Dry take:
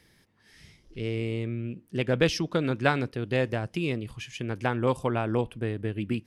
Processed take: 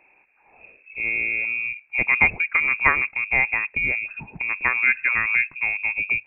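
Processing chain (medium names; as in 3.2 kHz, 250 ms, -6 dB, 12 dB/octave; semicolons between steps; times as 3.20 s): local Wiener filter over 9 samples; frequency inversion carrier 2.6 kHz; trim +5.5 dB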